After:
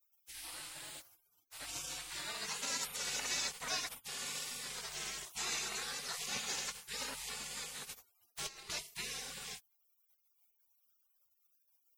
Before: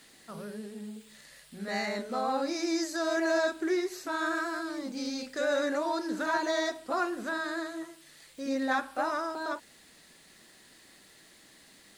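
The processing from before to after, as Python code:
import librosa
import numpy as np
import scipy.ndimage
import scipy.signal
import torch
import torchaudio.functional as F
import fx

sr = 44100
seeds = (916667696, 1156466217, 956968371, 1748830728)

y = fx.over_compress(x, sr, threshold_db=-36.0, ratio=-0.5, at=(7.89, 8.7))
y = fx.spec_gate(y, sr, threshold_db=-30, keep='weak')
y = F.gain(torch.from_numpy(y), 10.0).numpy()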